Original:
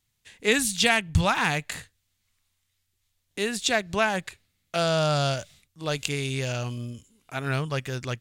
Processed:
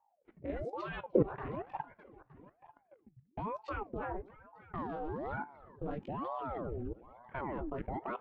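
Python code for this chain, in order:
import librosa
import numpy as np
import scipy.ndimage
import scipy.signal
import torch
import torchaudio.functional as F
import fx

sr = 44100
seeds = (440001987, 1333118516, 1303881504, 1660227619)

y = fx.wiener(x, sr, points=9)
y = scipy.signal.sosfilt(scipy.signal.butter(2, 1300.0, 'lowpass', fs=sr, output='sos'), y)
y = fx.peak_eq(y, sr, hz=120.0, db=-9.5, octaves=0.63)
y = fx.chorus_voices(y, sr, voices=2, hz=0.29, base_ms=19, depth_ms=3.5, mix_pct=45)
y = fx.tilt_eq(y, sr, slope=-3.5)
y = fx.echo_feedback(y, sr, ms=298, feedback_pct=49, wet_db=-14)
y = fx.dereverb_blind(y, sr, rt60_s=1.0)
y = fx.level_steps(y, sr, step_db=19)
y = fx.comb_fb(y, sr, f0_hz=52.0, decay_s=0.24, harmonics='all', damping=0.0, mix_pct=40)
y = fx.rider(y, sr, range_db=3, speed_s=0.5)
y = fx.ring_lfo(y, sr, carrier_hz=500.0, swing_pct=75, hz=1.1)
y = y * 10.0 ** (3.0 / 20.0)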